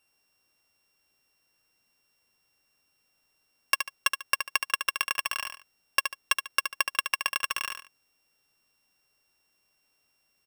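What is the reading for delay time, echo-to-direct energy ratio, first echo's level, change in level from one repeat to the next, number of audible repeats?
72 ms, −6.5 dB, −7.0 dB, −11.0 dB, 2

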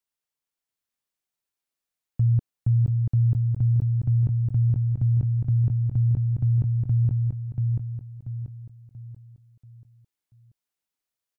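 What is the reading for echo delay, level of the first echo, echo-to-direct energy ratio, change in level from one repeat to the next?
685 ms, −3.5 dB, −3.0 dB, −8.0 dB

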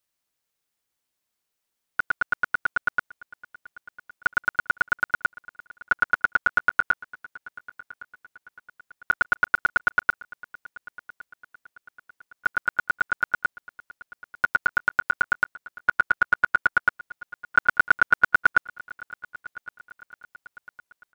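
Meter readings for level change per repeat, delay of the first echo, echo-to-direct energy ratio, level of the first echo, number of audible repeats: −7.0 dB, 1,112 ms, −19.5 dB, −20.5 dB, 3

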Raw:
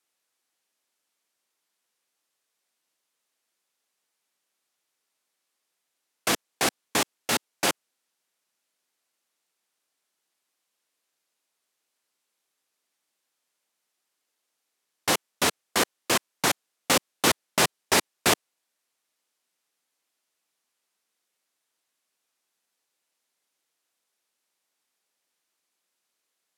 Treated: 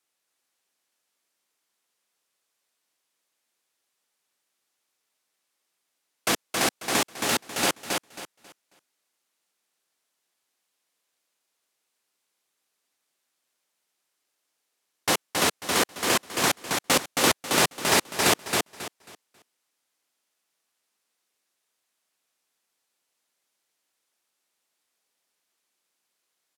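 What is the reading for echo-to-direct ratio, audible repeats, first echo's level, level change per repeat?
−3.5 dB, 3, −4.0 dB, −11.5 dB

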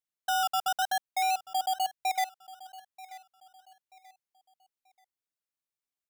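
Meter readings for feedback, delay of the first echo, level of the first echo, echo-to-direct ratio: 33%, 934 ms, −18.5 dB, −18.0 dB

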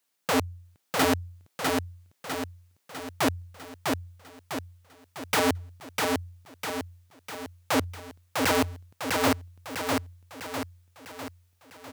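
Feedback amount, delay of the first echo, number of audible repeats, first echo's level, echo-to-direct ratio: 51%, 651 ms, 6, −3.0 dB, −1.5 dB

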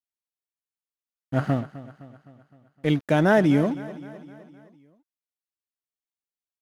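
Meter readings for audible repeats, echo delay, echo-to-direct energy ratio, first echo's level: 4, 257 ms, −15.0 dB, −16.5 dB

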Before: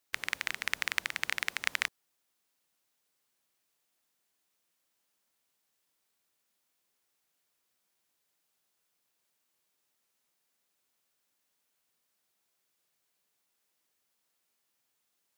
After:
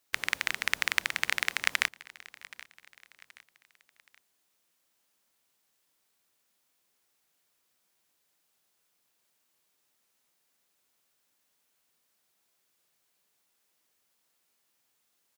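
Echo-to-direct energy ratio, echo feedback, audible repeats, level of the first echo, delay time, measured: −19.5 dB, 40%, 2, −20.0 dB, 775 ms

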